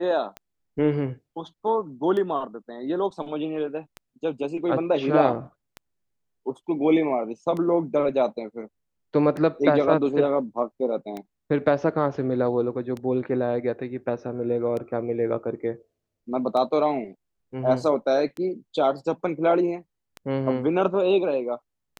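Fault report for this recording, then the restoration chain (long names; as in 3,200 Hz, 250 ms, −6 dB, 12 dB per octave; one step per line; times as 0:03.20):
scratch tick 33 1/3 rpm −20 dBFS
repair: click removal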